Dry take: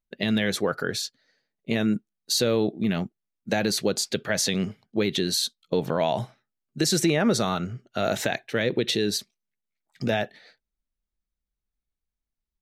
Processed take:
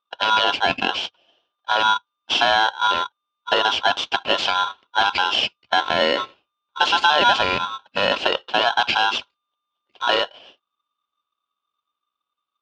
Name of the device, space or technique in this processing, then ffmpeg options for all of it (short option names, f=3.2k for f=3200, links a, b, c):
ring modulator pedal into a guitar cabinet: -af "aeval=exprs='val(0)*sgn(sin(2*PI*1200*n/s))':c=same,highpass=84,equalizer=f=98:t=q:w=4:g=-6,equalizer=f=150:t=q:w=4:g=-9,equalizer=f=1.2k:t=q:w=4:g=-4,equalizer=f=1.9k:t=q:w=4:g=-10,equalizer=f=2.9k:t=q:w=4:g=5,lowpass=f=3.8k:w=0.5412,lowpass=f=3.8k:w=1.3066,volume=7.5dB"